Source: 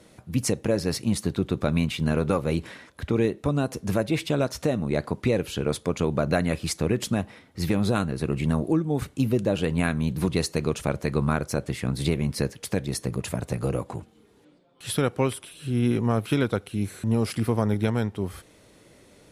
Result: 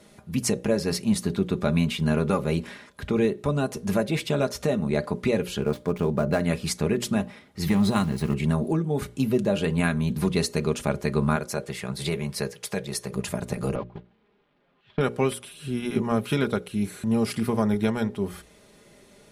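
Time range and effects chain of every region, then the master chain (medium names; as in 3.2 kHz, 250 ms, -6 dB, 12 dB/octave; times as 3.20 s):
5.61–6.41 s: dead-time distortion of 0.074 ms + treble shelf 2.1 kHz -9 dB
7.66–8.34 s: comb 1 ms, depth 43% + small samples zeroed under -39.5 dBFS
11.36–13.15 s: high-pass 180 Hz 6 dB/octave + peaking EQ 260 Hz -13 dB 0.39 oct
13.75–15.01 s: one-bit delta coder 64 kbps, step -39.5 dBFS + low-pass 3.4 kHz 24 dB/octave + gate -32 dBFS, range -21 dB
whole clip: hum notches 60/120/180/240/300/360/420/480/540/600 Hz; comb 4.9 ms, depth 48%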